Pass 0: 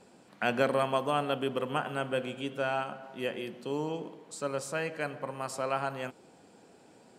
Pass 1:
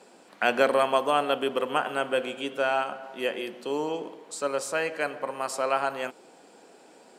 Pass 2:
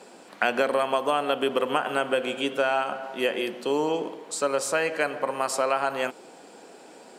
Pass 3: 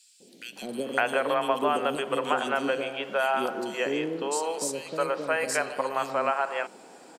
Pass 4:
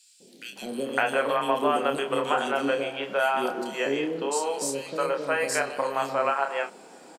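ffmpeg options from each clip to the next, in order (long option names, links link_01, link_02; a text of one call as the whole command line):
ffmpeg -i in.wav -af "highpass=320,volume=6dB" out.wav
ffmpeg -i in.wav -af "acompressor=threshold=-25dB:ratio=6,volume=5.5dB" out.wav
ffmpeg -i in.wav -filter_complex "[0:a]acrossover=split=440|3300[link_01][link_02][link_03];[link_01]adelay=200[link_04];[link_02]adelay=560[link_05];[link_04][link_05][link_03]amix=inputs=3:normalize=0" out.wav
ffmpeg -i in.wav -filter_complex "[0:a]asplit=2[link_01][link_02];[link_02]adelay=29,volume=-5.5dB[link_03];[link_01][link_03]amix=inputs=2:normalize=0" out.wav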